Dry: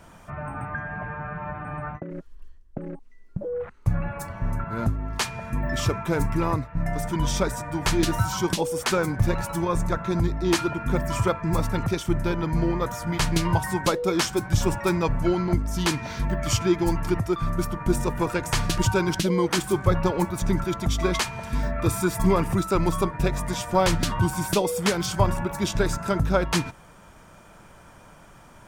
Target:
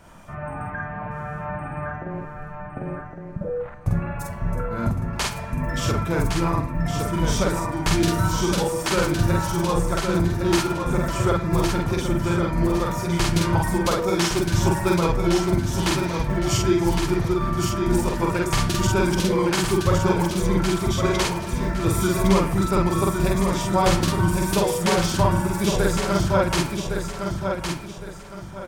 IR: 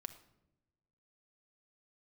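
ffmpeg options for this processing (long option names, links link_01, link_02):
-filter_complex "[0:a]aecho=1:1:1111|2222|3333|4444:0.531|0.165|0.051|0.0158,asplit=2[link_01][link_02];[1:a]atrim=start_sample=2205,adelay=47[link_03];[link_02][link_03]afir=irnorm=-1:irlink=0,volume=3dB[link_04];[link_01][link_04]amix=inputs=2:normalize=0,volume=-1dB"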